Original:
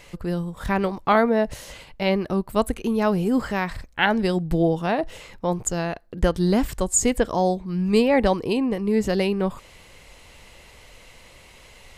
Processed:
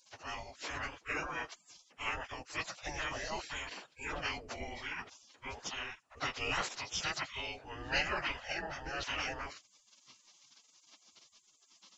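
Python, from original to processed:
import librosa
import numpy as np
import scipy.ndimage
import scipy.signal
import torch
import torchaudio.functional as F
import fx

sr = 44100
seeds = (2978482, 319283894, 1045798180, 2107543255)

y = fx.partial_stretch(x, sr, pct=83)
y = fx.spec_gate(y, sr, threshold_db=-25, keep='weak')
y = F.gain(torch.from_numpy(y), 4.5).numpy()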